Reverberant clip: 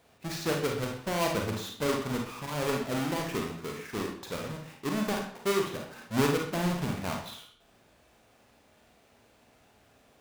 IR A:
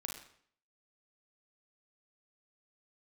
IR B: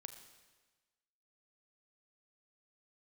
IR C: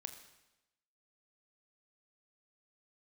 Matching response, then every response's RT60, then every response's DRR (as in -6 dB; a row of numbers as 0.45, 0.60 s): A; 0.60, 1.3, 0.95 s; 0.5, 7.5, 6.5 dB